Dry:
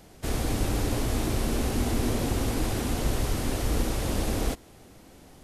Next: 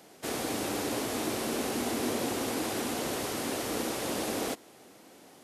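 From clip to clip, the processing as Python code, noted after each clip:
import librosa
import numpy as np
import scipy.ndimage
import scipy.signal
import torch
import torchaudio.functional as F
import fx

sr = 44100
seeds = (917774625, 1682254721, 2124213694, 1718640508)

y = scipy.signal.sosfilt(scipy.signal.butter(2, 270.0, 'highpass', fs=sr, output='sos'), x)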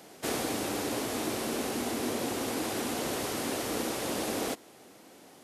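y = fx.rider(x, sr, range_db=10, speed_s=0.5)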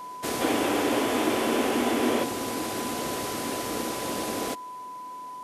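y = fx.spec_box(x, sr, start_s=0.41, length_s=1.82, low_hz=230.0, high_hz=3600.0, gain_db=7)
y = y + 10.0 ** (-38.0 / 20.0) * np.sin(2.0 * np.pi * 1000.0 * np.arange(len(y)) / sr)
y = y * 10.0 ** (1.5 / 20.0)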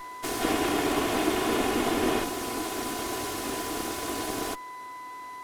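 y = fx.lower_of_two(x, sr, delay_ms=2.8)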